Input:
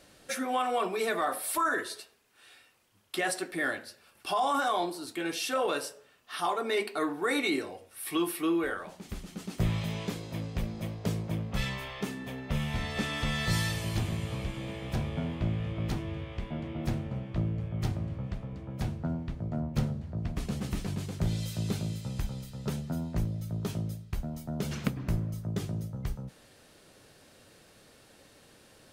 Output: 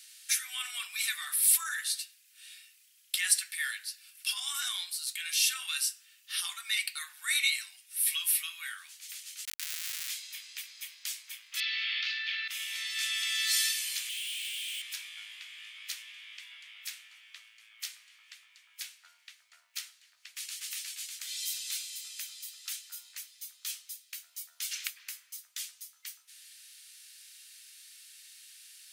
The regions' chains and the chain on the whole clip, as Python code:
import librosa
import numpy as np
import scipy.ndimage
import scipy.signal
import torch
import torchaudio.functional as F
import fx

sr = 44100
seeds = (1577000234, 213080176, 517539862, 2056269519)

y = fx.chain(x, sr, fx.peak_eq(hz=880.0, db=-2.0, octaves=1.7),
    fx.schmitt(flips_db=-35.5), at=(9.45, 10.09))
y = fx.chain(y, sr, fx.ellip_bandpass(low_hz=1300.0, high_hz=4500.0, order=3, stop_db=40),
    fx.env_flatten(amount_pct=100), at=(11.6, 12.48))
y = fx.chain(y, sr, fx.bandpass_q(hz=3000.0, q=4.2),
    fx.leveller(passes=5), at=(14.09, 14.82))
y = scipy.signal.sosfilt(scipy.signal.cheby2(4, 70, 440.0, 'highpass', fs=sr, output='sos'), y)
y = fx.high_shelf(y, sr, hz=4200.0, db=11.0)
y = y * 10.0 ** (2.0 / 20.0)